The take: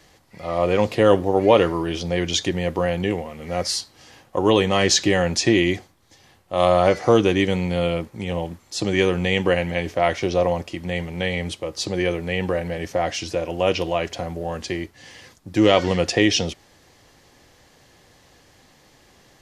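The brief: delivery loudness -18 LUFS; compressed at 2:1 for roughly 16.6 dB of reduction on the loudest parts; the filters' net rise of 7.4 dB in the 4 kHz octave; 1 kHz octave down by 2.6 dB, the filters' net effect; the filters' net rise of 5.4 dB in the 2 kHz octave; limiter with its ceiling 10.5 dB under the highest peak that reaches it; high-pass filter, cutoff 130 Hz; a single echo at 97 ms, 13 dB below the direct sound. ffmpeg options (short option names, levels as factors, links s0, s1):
-af "highpass=130,equalizer=f=1000:t=o:g=-5.5,equalizer=f=2000:t=o:g=5,equalizer=f=4000:t=o:g=8.5,acompressor=threshold=0.00891:ratio=2,alimiter=level_in=1.12:limit=0.0631:level=0:latency=1,volume=0.891,aecho=1:1:97:0.224,volume=8.41"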